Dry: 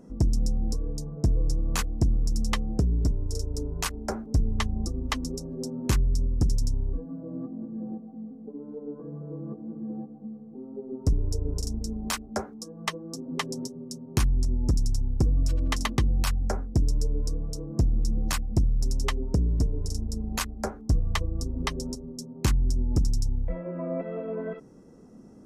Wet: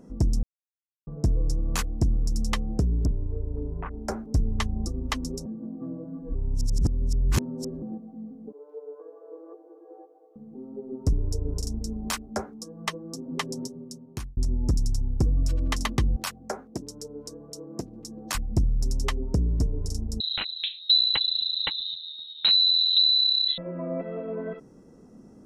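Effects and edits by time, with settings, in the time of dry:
0.43–1.07 s: mute
3.05–3.94 s: Gaussian low-pass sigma 5.6 samples
5.46–7.82 s: reverse
8.52–10.36 s: steep high-pass 340 Hz 96 dB/octave
13.73–14.37 s: fade out linear
16.16–18.35 s: high-pass 290 Hz
20.20–23.58 s: frequency inversion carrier 4 kHz

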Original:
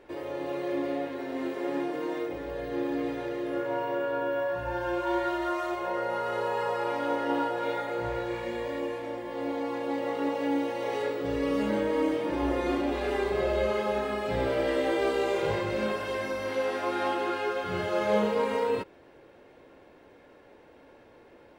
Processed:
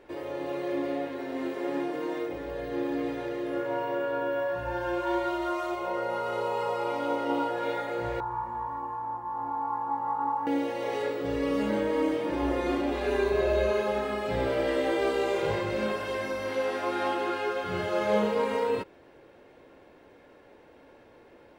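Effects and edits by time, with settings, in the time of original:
5.16–7.49 s: band-stop 1.7 kHz, Q 5
8.20–10.47 s: FFT filter 140 Hz 0 dB, 210 Hz -8 dB, 620 Hz -18 dB, 890 Hz +13 dB, 1.3 kHz +3 dB, 2.1 kHz -21 dB, 3.1 kHz -26 dB, 11 kHz -15 dB
13.06–13.88 s: rippled EQ curve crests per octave 1.5, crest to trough 7 dB

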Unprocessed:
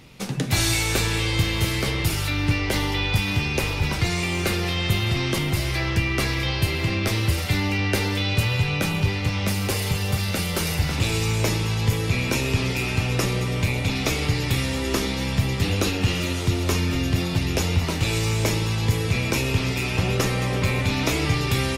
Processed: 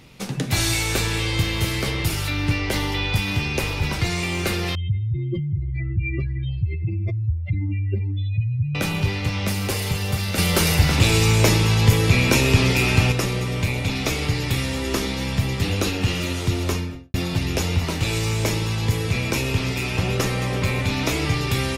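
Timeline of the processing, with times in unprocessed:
4.75–8.75 s: spectral contrast enhancement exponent 3.7
10.38–13.12 s: gain +6 dB
16.62–17.14 s: studio fade out

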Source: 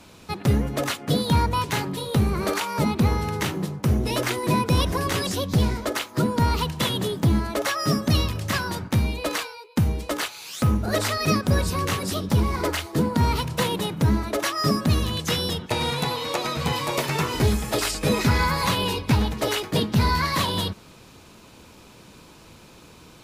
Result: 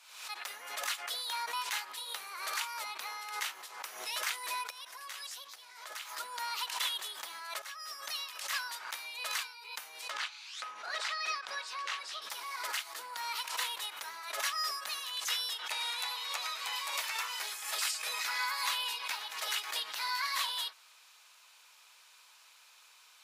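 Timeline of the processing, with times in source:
4.70–6.18 s: compression 10:1, threshold -29 dBFS
7.62–8.60 s: fade in, from -13.5 dB
10.10–12.22 s: low-pass 4.6 kHz
whole clip: Bessel high-pass 1.4 kHz, order 4; swell ahead of each attack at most 71 dB/s; trim -6 dB

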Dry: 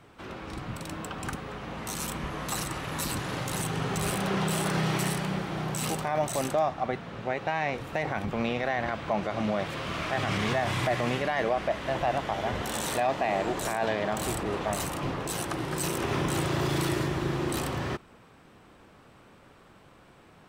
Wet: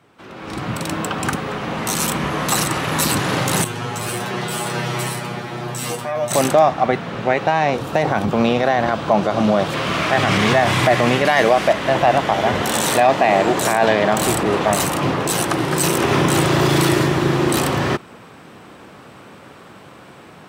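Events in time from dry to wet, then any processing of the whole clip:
3.64–6.31 s: feedback comb 120 Hz, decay 0.17 s, mix 100%
7.46–9.74 s: peaking EQ 2.1 kHz -7.5 dB 0.68 oct
11.25–11.73 s: treble shelf 4.6 kHz +10 dB
whole clip: high-pass 110 Hz 12 dB/octave; level rider gain up to 14 dB

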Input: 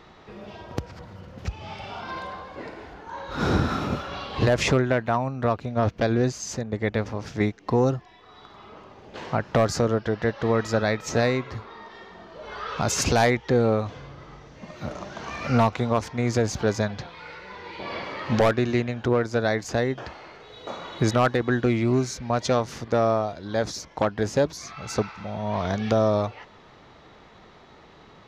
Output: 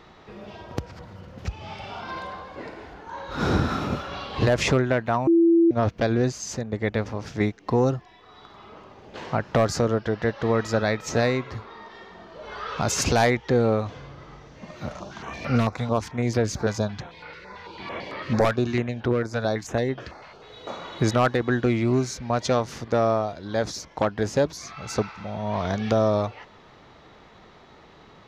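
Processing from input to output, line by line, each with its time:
5.27–5.71 s: bleep 335 Hz -13.5 dBFS
14.89–20.42 s: step-sequenced notch 9 Hz 350–7200 Hz

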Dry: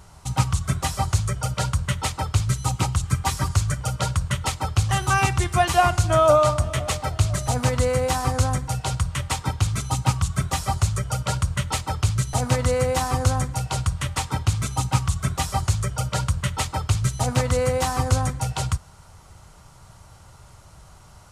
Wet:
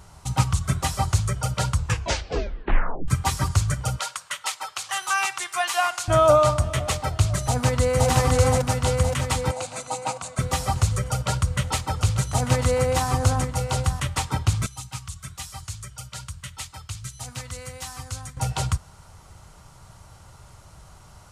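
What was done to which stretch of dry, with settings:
1.72 s: tape stop 1.36 s
3.99–6.08 s: high-pass 1 kHz
7.45–8.09 s: echo throw 520 ms, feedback 65%, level 0 dB
9.51–10.39 s: cabinet simulation 410–9500 Hz, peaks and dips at 410 Hz -7 dB, 670 Hz +6 dB, 1.2 kHz -5 dB, 1.8 kHz -7 dB, 3.2 kHz -8 dB, 5.4 kHz -8 dB
11.07–14.00 s: delay 893 ms -11 dB
14.66–18.37 s: amplifier tone stack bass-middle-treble 5-5-5

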